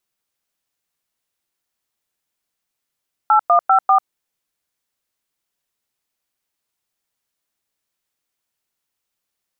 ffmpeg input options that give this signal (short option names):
-f lavfi -i "aevalsrc='0.251*clip(min(mod(t,0.197),0.094-mod(t,0.197))/0.002,0,1)*(eq(floor(t/0.197),0)*(sin(2*PI*852*mod(t,0.197))+sin(2*PI*1336*mod(t,0.197)))+eq(floor(t/0.197),1)*(sin(2*PI*697*mod(t,0.197))+sin(2*PI*1209*mod(t,0.197)))+eq(floor(t/0.197),2)*(sin(2*PI*770*mod(t,0.197))+sin(2*PI*1336*mod(t,0.197)))+eq(floor(t/0.197),3)*(sin(2*PI*770*mod(t,0.197))+sin(2*PI*1209*mod(t,0.197))))':d=0.788:s=44100"